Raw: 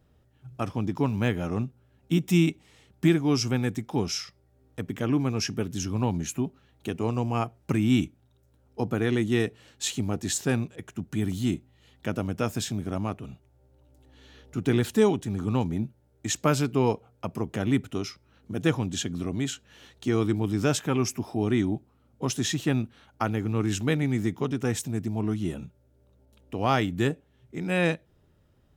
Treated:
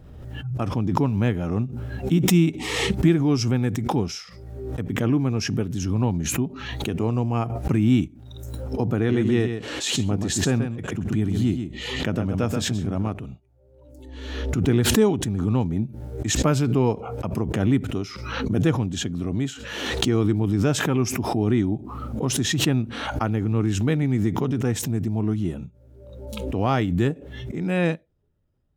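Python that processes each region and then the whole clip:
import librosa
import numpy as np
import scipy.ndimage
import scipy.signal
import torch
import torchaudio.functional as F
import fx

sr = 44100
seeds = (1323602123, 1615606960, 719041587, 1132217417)

y = fx.chain(x, sr, fx.high_shelf(hz=11000.0, db=-8.0),
    fx.echo_single(ms=130, db=-7.5), at=(8.96, 13.08))
y = fx.noise_reduce_blind(y, sr, reduce_db=14)
y = fx.tilt_eq(y, sr, slope=-1.5)
y = fx.pre_swell(y, sr, db_per_s=38.0)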